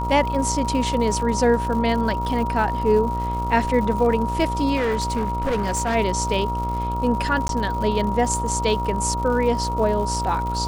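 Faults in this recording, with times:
mains buzz 60 Hz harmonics 23 −27 dBFS
surface crackle 140 per second −30 dBFS
whistle 950 Hz −25 dBFS
0:04.76–0:05.96: clipping −18.5 dBFS
0:07.48–0:07.49: drop-out 12 ms

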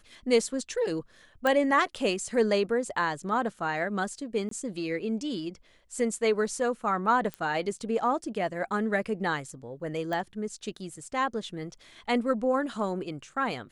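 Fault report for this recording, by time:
0:01.47: click −14 dBFS
0:04.49–0:04.51: drop-out 23 ms
0:07.34: click −21 dBFS
0:10.13: click

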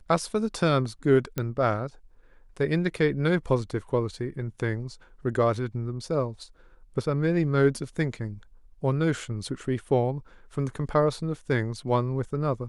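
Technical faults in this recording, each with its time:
0:01.38: click −14 dBFS

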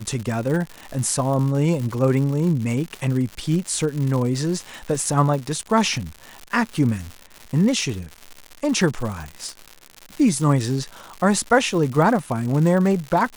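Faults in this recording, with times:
surface crackle 190 per second −27 dBFS

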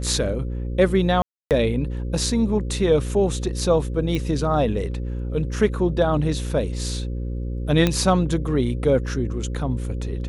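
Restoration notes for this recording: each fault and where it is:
mains buzz 60 Hz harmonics 9 −27 dBFS
0:01.22–0:01.51: drop-out 288 ms
0:04.15: click −14 dBFS
0:07.87: click −6 dBFS

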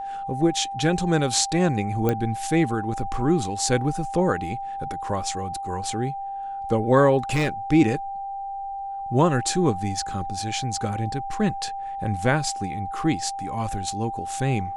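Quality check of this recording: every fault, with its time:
whistle 790 Hz −29 dBFS
0:02.09: click −10 dBFS
0:07.31–0:07.49: clipping −18 dBFS

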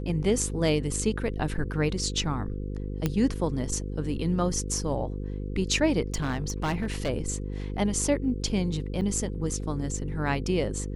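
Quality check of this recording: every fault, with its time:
mains buzz 50 Hz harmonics 10 −33 dBFS
0:03.06: click −12 dBFS
0:06.14–0:07.10: clipping −23.5 dBFS
0:09.01–0:09.02: drop-out 7.1 ms

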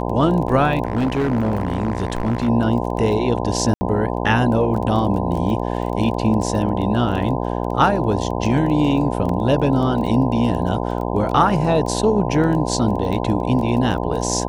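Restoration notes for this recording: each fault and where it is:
mains buzz 60 Hz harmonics 17 −23 dBFS
surface crackle 14 per second −26 dBFS
0:00.85–0:02.49: clipping −15.5 dBFS
0:03.74–0:03.81: drop-out 70 ms
0:09.29: drop-out 2.8 ms

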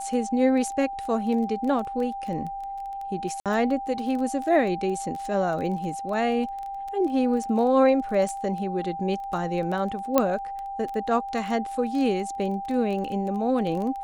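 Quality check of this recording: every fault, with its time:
surface crackle 15 per second −30 dBFS
whistle 790 Hz −31 dBFS
0:03.40–0:03.46: drop-out 57 ms
0:10.18: click −6 dBFS

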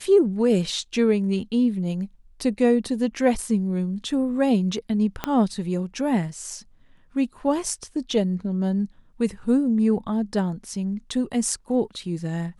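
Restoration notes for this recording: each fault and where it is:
0:05.24: click −10 dBFS

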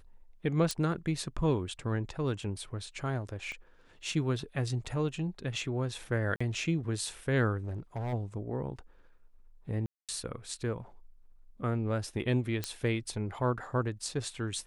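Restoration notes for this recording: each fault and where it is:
0:00.71: click −18 dBFS
0:03.52: click −29 dBFS
0:06.36–0:06.41: drop-out 45 ms
0:07.59–0:08.14: clipping −32 dBFS
0:09.86–0:10.09: drop-out 227 ms
0:12.64: click −16 dBFS

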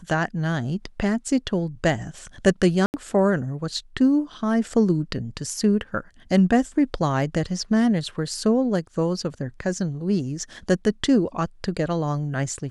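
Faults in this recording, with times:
0:02.86–0:02.94: drop-out 79 ms

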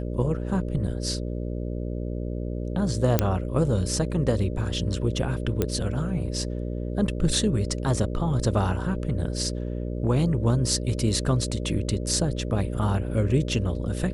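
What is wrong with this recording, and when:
mains buzz 60 Hz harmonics 10 −30 dBFS
0:03.19: click −5 dBFS
0:05.62: click −11 dBFS

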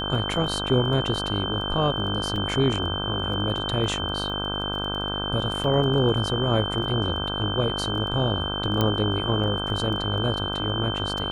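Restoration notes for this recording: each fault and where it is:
mains buzz 50 Hz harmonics 32 −31 dBFS
surface crackle 11 per second −33 dBFS
whistle 3,100 Hz −29 dBFS
0:02.36: drop-out 2.6 ms
0:05.64: drop-out 3.4 ms
0:08.81: click −9 dBFS

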